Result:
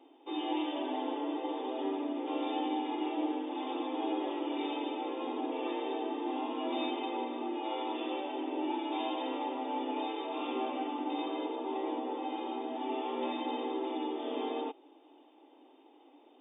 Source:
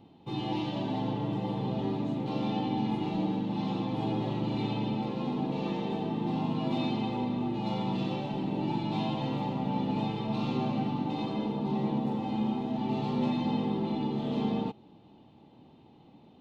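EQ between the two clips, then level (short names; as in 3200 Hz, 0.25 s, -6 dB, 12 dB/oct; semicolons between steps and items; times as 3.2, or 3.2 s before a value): brick-wall FIR high-pass 260 Hz; brick-wall FIR low-pass 3700 Hz; 0.0 dB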